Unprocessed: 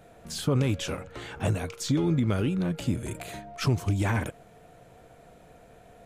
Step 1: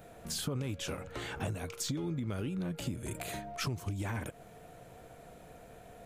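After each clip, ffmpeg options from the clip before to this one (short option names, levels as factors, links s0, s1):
-af "highshelf=f=12000:g=9,acompressor=threshold=0.02:ratio=5"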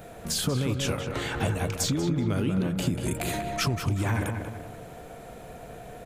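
-filter_complex "[0:a]asplit=2[s0][s1];[s1]adelay=189,lowpass=f=2300:p=1,volume=0.562,asplit=2[s2][s3];[s3]adelay=189,lowpass=f=2300:p=1,volume=0.44,asplit=2[s4][s5];[s5]adelay=189,lowpass=f=2300:p=1,volume=0.44,asplit=2[s6][s7];[s7]adelay=189,lowpass=f=2300:p=1,volume=0.44,asplit=2[s8][s9];[s9]adelay=189,lowpass=f=2300:p=1,volume=0.44[s10];[s0][s2][s4][s6][s8][s10]amix=inputs=6:normalize=0,volume=2.66"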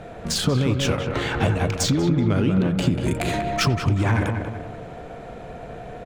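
-filter_complex "[0:a]adynamicsmooth=sensitivity=4.5:basefreq=4200,asplit=2[s0][s1];[s1]adelay=90,highpass=300,lowpass=3400,asoftclip=type=hard:threshold=0.0708,volume=0.126[s2];[s0][s2]amix=inputs=2:normalize=0,volume=2.11"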